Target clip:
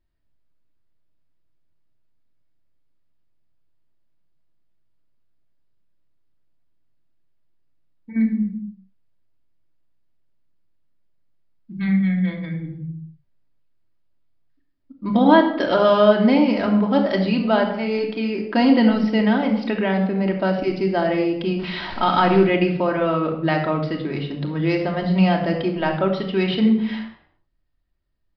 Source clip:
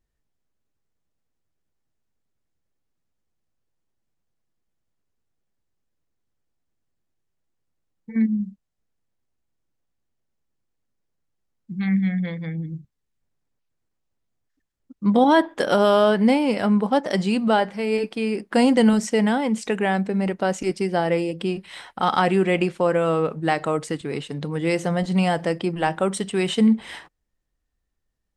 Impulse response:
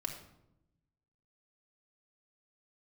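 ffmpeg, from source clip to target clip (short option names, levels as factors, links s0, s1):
-filter_complex "[0:a]asettb=1/sr,asplit=3[s0][s1][s2];[s0]atrim=end=21.594[s3];[s1]atrim=start=21.59:end=22.44,asetpts=PTS-STARTPTS,afade=t=in:d=0.004:c=qsin,afade=t=out:st=0.846:d=0.004:c=qsin,aeval=exprs='val(0)+0.5*0.0376*sgn(val(0))':c=same[s4];[s2]atrim=start=22.436[s5];[s3][s4]acrossfade=d=0.004:c1=hsin:c2=qsin[s6];[s6][s5]acrossfade=d=0.004:c1=qsin:c2=hsin,aresample=11025,aresample=44100[s7];[1:a]atrim=start_sample=2205,afade=t=out:st=0.45:d=0.01,atrim=end_sample=20286[s8];[s7][s8]afir=irnorm=-1:irlink=0,volume=1.12"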